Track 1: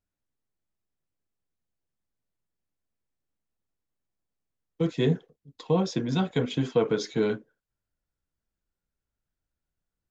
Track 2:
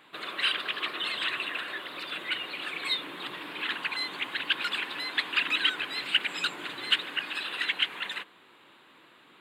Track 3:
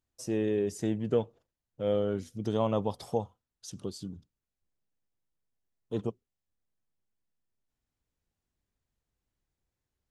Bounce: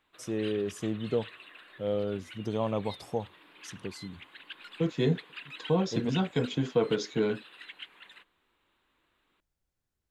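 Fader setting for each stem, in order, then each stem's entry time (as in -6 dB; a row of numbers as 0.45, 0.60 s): -2.5, -17.5, -2.0 dB; 0.00, 0.00, 0.00 s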